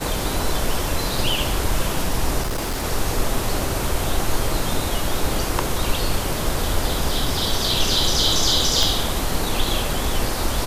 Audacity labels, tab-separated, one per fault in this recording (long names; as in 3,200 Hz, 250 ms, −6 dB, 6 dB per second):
2.420000	2.850000	clipping −20.5 dBFS
8.830000	8.830000	click